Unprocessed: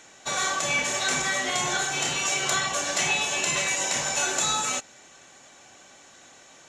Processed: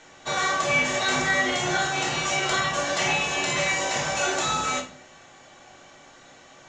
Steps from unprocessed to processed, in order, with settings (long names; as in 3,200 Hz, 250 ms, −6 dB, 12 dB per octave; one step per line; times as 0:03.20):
high-frequency loss of the air 100 metres
notch filter 2,500 Hz, Q 19
rectangular room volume 58 cubic metres, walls mixed, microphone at 0.63 metres
level +1 dB